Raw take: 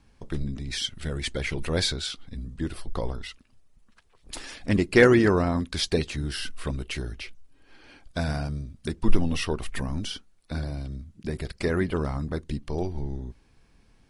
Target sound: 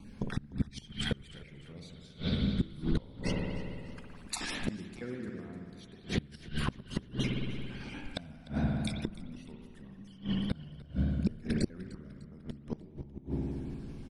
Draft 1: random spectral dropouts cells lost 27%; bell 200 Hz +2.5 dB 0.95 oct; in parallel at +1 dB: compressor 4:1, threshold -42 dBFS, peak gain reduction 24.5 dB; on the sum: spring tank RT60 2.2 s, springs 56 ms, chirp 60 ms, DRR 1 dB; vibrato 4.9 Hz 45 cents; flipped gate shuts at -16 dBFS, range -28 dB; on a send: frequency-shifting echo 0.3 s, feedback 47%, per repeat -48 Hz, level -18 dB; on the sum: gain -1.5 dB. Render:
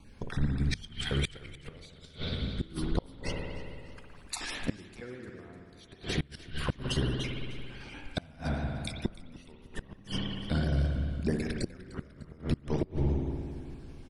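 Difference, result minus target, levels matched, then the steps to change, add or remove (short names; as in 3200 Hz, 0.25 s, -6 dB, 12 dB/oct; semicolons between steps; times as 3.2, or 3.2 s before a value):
250 Hz band -3.0 dB
change: bell 200 Hz +13 dB 0.95 oct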